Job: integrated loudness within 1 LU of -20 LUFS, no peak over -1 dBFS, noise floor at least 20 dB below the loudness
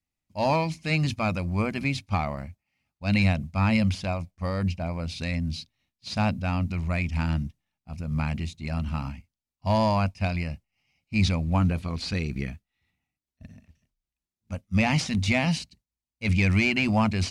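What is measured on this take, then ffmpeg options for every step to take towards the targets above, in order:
loudness -26.5 LUFS; peak -13.0 dBFS; loudness target -20.0 LUFS
-> -af "volume=6.5dB"

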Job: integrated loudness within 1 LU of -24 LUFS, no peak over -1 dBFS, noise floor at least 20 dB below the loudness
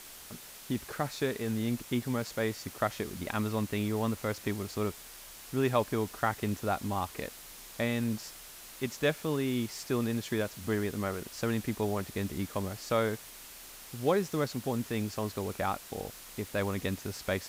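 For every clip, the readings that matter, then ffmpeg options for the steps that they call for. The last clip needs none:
noise floor -49 dBFS; noise floor target -54 dBFS; loudness -33.5 LUFS; peak -14.0 dBFS; loudness target -24.0 LUFS
-> -af "afftdn=nr=6:nf=-49"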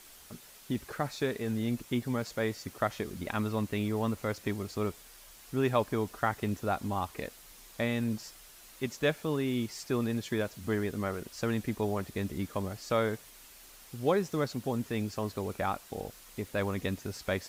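noise floor -54 dBFS; loudness -33.5 LUFS; peak -14.0 dBFS; loudness target -24.0 LUFS
-> -af "volume=9.5dB"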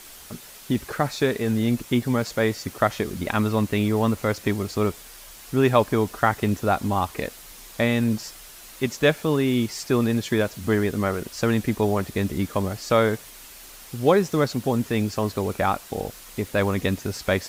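loudness -24.0 LUFS; peak -4.5 dBFS; noise floor -44 dBFS

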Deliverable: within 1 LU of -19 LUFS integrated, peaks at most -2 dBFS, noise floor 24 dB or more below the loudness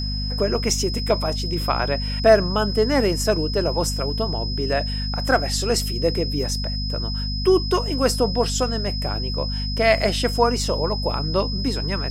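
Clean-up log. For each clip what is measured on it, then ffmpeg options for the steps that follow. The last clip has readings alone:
hum 50 Hz; harmonics up to 250 Hz; hum level -24 dBFS; steady tone 5100 Hz; tone level -29 dBFS; loudness -21.5 LUFS; peak -4.0 dBFS; loudness target -19.0 LUFS
-> -af "bandreject=f=50:t=h:w=4,bandreject=f=100:t=h:w=4,bandreject=f=150:t=h:w=4,bandreject=f=200:t=h:w=4,bandreject=f=250:t=h:w=4"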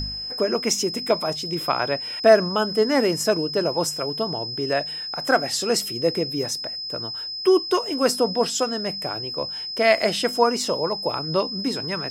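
hum none; steady tone 5100 Hz; tone level -29 dBFS
-> -af "bandreject=f=5.1k:w=30"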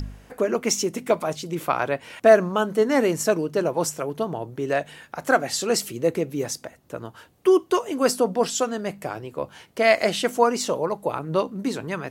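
steady tone none; loudness -23.5 LUFS; peak -4.5 dBFS; loudness target -19.0 LUFS
-> -af "volume=4.5dB,alimiter=limit=-2dB:level=0:latency=1"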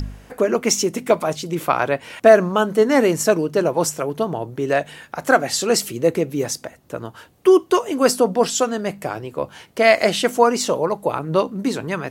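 loudness -19.0 LUFS; peak -2.0 dBFS; noise floor -49 dBFS

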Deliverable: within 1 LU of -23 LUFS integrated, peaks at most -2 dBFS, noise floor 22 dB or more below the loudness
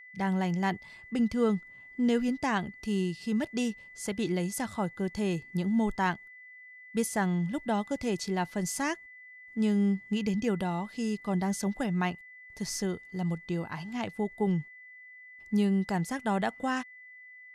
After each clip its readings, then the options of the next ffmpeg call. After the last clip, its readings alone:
steady tone 2000 Hz; tone level -48 dBFS; loudness -31.0 LUFS; peak -15.5 dBFS; loudness target -23.0 LUFS
-> -af "bandreject=f=2k:w=30"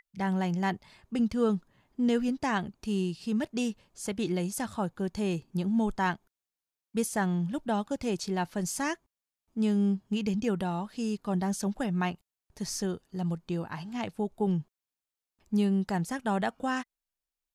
steady tone none; loudness -31.0 LUFS; peak -15.5 dBFS; loudness target -23.0 LUFS
-> -af "volume=8dB"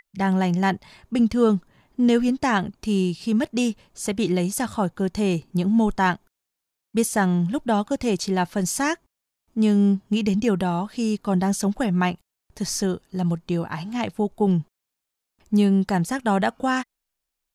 loudness -23.0 LUFS; peak -7.5 dBFS; noise floor -83 dBFS

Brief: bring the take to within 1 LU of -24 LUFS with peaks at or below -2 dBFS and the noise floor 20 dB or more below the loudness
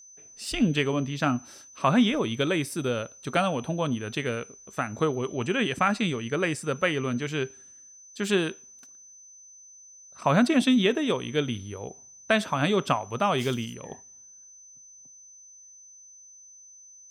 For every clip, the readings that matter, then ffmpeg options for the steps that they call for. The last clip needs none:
steady tone 6100 Hz; tone level -48 dBFS; loudness -26.5 LUFS; peak -10.0 dBFS; loudness target -24.0 LUFS
-> -af "bandreject=f=6.1k:w=30"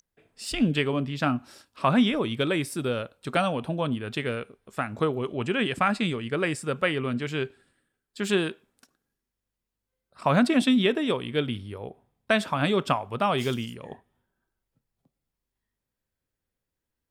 steady tone none; loudness -26.5 LUFS; peak -10.0 dBFS; loudness target -24.0 LUFS
-> -af "volume=2.5dB"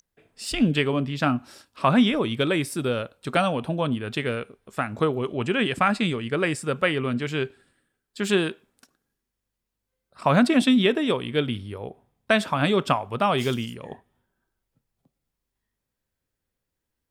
loudness -24.0 LUFS; peak -7.5 dBFS; noise floor -83 dBFS

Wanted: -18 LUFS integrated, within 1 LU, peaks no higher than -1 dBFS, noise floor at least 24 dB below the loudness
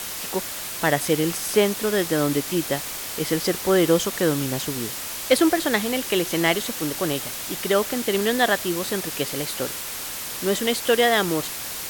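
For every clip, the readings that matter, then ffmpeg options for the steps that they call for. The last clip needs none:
noise floor -32 dBFS; noise floor target -47 dBFS; loudness -23.0 LUFS; peak -7.0 dBFS; loudness target -18.0 LUFS
-> -af "afftdn=nr=15:nf=-32"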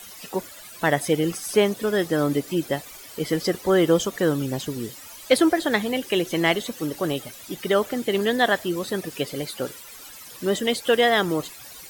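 noise floor -43 dBFS; noise floor target -48 dBFS
-> -af "afftdn=nr=6:nf=-43"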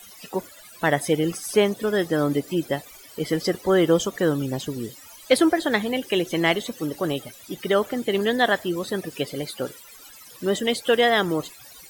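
noise floor -46 dBFS; noise floor target -48 dBFS
-> -af "afftdn=nr=6:nf=-46"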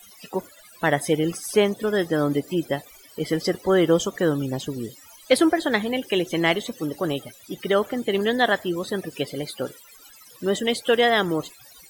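noise floor -49 dBFS; loudness -23.5 LUFS; peak -7.5 dBFS; loudness target -18.0 LUFS
-> -af "volume=5.5dB"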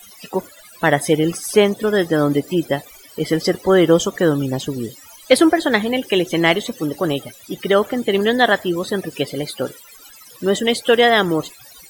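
loudness -18.0 LUFS; peak -2.0 dBFS; noise floor -44 dBFS

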